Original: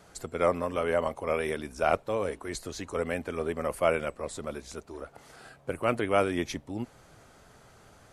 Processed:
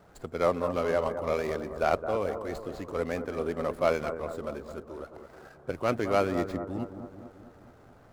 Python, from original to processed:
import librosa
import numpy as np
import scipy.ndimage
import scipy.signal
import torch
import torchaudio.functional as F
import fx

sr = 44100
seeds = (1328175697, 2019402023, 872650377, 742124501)

y = scipy.signal.medfilt(x, 15)
y = fx.echo_bbd(y, sr, ms=216, stages=2048, feedback_pct=57, wet_db=-9)